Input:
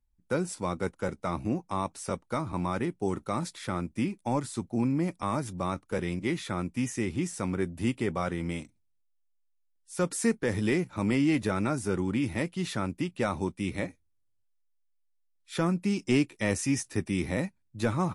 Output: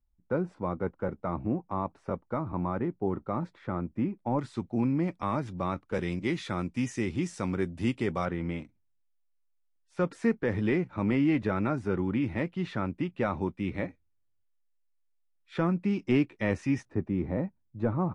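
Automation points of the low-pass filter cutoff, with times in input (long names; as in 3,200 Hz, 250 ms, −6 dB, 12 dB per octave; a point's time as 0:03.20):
1,300 Hz
from 0:04.39 3,200 Hz
from 0:05.94 5,700 Hz
from 0:08.25 2,400 Hz
from 0:16.85 1,000 Hz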